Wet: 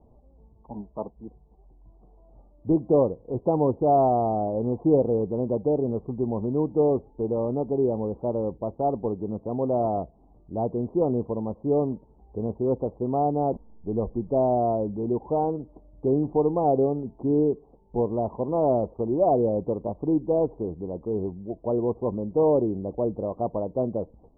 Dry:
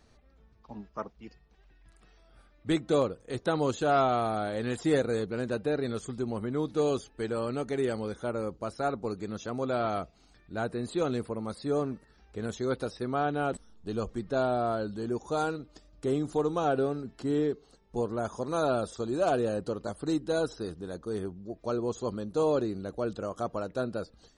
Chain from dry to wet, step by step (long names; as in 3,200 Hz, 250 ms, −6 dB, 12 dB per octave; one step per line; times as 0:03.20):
Butterworth low-pass 990 Hz 72 dB per octave
level +6 dB